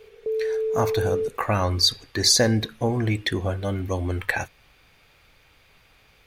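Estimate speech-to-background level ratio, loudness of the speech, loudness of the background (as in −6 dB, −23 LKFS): 3.0 dB, −23.5 LKFS, −26.5 LKFS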